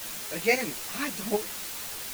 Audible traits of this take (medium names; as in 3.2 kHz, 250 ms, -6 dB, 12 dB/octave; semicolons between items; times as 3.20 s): tremolo saw up 3.7 Hz, depth 65%; a quantiser's noise floor 6-bit, dither triangular; a shimmering, thickened sound